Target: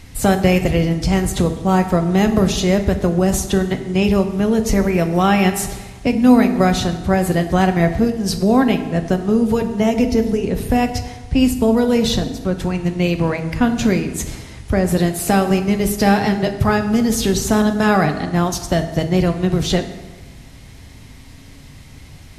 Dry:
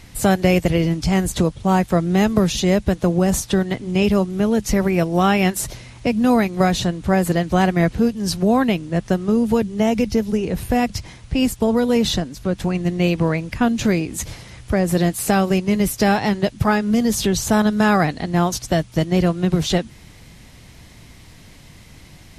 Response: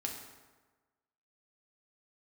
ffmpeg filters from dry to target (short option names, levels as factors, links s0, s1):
-filter_complex "[0:a]asplit=2[s0][s1];[1:a]atrim=start_sample=2205,lowshelf=f=170:g=6.5[s2];[s1][s2]afir=irnorm=-1:irlink=0,volume=1.12[s3];[s0][s3]amix=inputs=2:normalize=0,volume=0.562"